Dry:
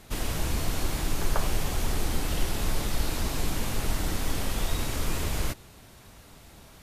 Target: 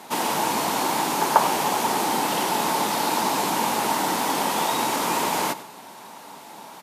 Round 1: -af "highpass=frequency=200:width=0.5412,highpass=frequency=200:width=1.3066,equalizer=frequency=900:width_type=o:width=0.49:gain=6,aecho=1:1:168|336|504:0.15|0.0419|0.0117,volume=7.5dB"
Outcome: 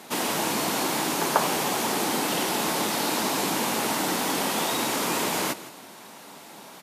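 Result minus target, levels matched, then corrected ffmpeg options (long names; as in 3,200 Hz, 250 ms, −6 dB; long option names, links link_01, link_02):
echo 69 ms late; 1,000 Hz band −4.0 dB
-af "highpass=frequency=200:width=0.5412,highpass=frequency=200:width=1.3066,equalizer=frequency=900:width_type=o:width=0.49:gain=14.5,aecho=1:1:99|198|297:0.15|0.0419|0.0117,volume=7.5dB"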